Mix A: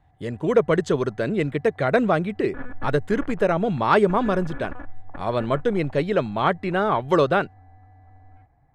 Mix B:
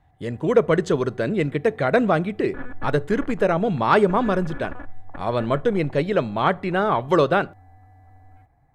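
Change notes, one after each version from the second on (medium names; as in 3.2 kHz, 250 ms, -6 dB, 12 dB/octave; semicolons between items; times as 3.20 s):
background: remove distance through air 140 m; reverb: on, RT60 0.50 s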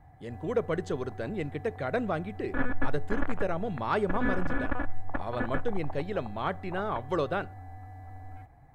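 speech -11.5 dB; background +5.5 dB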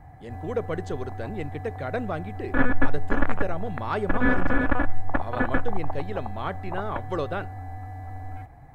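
background +8.0 dB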